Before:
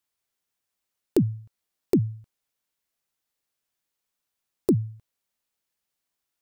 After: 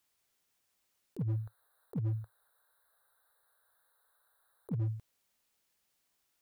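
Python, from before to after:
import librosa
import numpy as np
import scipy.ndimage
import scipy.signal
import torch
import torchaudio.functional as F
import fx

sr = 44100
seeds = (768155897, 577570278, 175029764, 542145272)

y = fx.curve_eq(x, sr, hz=(110.0, 210.0, 490.0, 1100.0, 1600.0, 2700.0, 3900.0, 5700.0, 9400.0), db=(0, -21, 7, 11, 14, -27, 7, -25, 5), at=(1.17, 4.78), fade=0.02)
y = fx.over_compress(y, sr, threshold_db=-30.0, ratio=-0.5)
y = np.clip(y, -10.0 ** (-29.5 / 20.0), 10.0 ** (-29.5 / 20.0))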